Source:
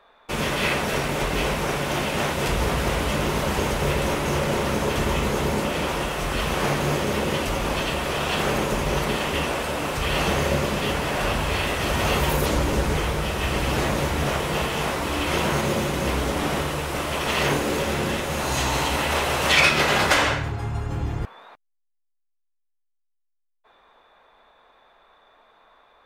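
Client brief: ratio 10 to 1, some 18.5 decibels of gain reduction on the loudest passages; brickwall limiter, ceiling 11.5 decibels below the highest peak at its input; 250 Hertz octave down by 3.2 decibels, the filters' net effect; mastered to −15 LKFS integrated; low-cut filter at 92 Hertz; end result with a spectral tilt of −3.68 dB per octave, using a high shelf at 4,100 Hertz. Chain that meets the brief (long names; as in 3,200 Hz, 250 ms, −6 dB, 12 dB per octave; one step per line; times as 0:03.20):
high-pass filter 92 Hz
parametric band 250 Hz −4.5 dB
high-shelf EQ 4,100 Hz +6.5 dB
downward compressor 10 to 1, threshold −31 dBFS
level +23.5 dB
brickwall limiter −7 dBFS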